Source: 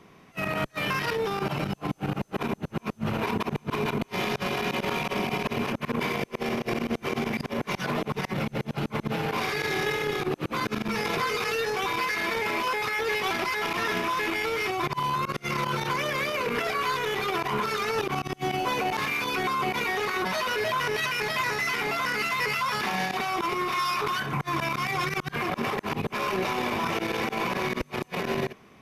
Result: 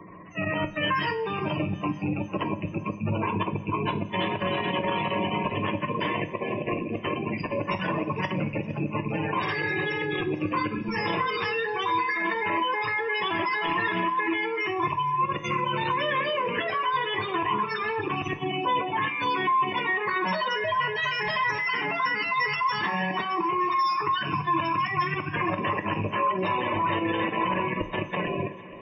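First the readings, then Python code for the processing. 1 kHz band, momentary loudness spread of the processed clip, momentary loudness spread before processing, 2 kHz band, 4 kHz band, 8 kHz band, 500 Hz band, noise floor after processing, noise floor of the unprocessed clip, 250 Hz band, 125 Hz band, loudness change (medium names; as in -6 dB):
+3.0 dB, 5 LU, 4 LU, +0.5 dB, -1.0 dB, under -15 dB, -0.5 dB, -38 dBFS, -54 dBFS, +1.5 dB, +1.5 dB, +1.0 dB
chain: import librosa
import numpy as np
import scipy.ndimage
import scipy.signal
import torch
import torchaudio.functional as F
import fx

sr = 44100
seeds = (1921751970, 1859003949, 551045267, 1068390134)

p1 = fx.rattle_buzz(x, sr, strikes_db=-39.0, level_db=-22.0)
p2 = fx.level_steps(p1, sr, step_db=17)
p3 = p1 + (p2 * 10.0 ** (1.0 / 20.0))
p4 = fx.spec_gate(p3, sr, threshold_db=-15, keep='strong')
p5 = fx.ripple_eq(p4, sr, per_octave=1.2, db=11)
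p6 = p5 + fx.echo_feedback(p5, sr, ms=459, feedback_pct=55, wet_db=-22.0, dry=0)
p7 = fx.rev_double_slope(p6, sr, seeds[0], early_s=0.34, late_s=1.7, knee_db=-16, drr_db=6.5)
p8 = fx.band_squash(p7, sr, depth_pct=40)
y = p8 * 10.0 ** (-4.0 / 20.0)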